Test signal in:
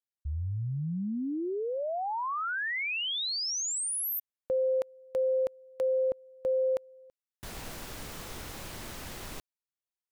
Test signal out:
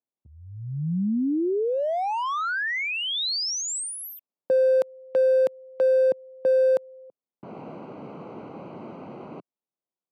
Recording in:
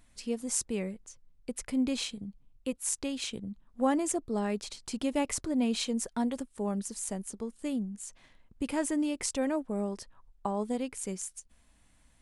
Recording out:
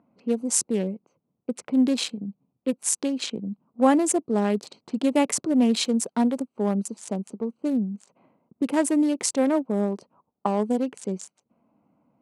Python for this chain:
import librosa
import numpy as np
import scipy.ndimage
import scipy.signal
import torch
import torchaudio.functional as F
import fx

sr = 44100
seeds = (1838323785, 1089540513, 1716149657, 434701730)

y = fx.wiener(x, sr, points=25)
y = scipy.signal.sosfilt(scipy.signal.butter(4, 160.0, 'highpass', fs=sr, output='sos'), y)
y = fx.env_lowpass(y, sr, base_hz=1600.0, full_db=-30.5)
y = y * 10.0 ** (9.0 / 20.0)